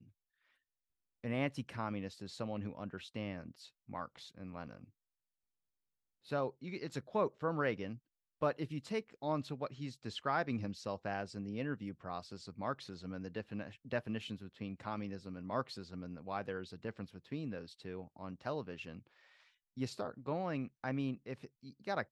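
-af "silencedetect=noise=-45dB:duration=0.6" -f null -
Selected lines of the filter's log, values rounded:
silence_start: 0.00
silence_end: 1.24 | silence_duration: 1.24
silence_start: 4.84
silence_end: 6.30 | silence_duration: 1.46
silence_start: 18.99
silence_end: 19.77 | silence_duration: 0.78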